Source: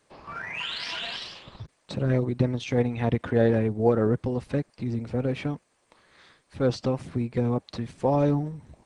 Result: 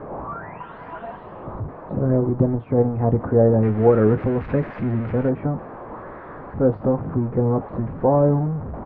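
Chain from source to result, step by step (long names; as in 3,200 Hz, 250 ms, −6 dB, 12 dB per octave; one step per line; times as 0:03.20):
converter with a step at zero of −30.5 dBFS
low-pass filter 1,100 Hz 24 dB per octave, from 0:03.63 2,000 Hz, from 0:05.29 1,200 Hz
double-tracking delay 19 ms −10.5 dB
level +4.5 dB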